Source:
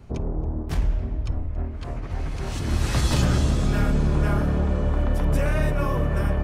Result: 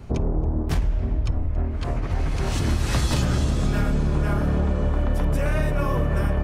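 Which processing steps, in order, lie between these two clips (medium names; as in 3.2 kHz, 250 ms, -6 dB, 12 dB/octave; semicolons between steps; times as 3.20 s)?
compression, threshold -24 dBFS, peak gain reduction 8.5 dB; trim +6 dB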